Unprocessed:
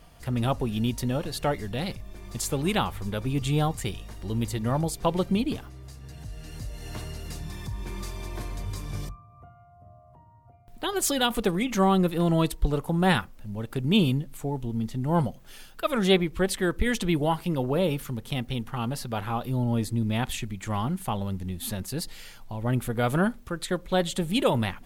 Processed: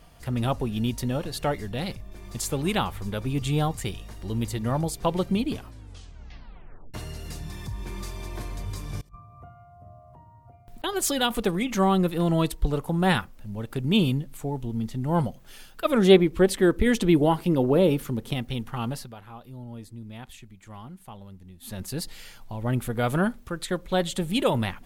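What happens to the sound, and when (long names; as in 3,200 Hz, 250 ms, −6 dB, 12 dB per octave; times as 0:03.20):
0:00.68–0:02.12: one half of a high-frequency compander decoder only
0:05.52: tape stop 1.42 s
0:09.01–0:10.84: compressor whose output falls as the input rises −43 dBFS, ratio −0.5
0:15.85–0:18.34: parametric band 330 Hz +7.5 dB 1.7 octaves
0:18.91–0:21.85: duck −14 dB, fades 0.24 s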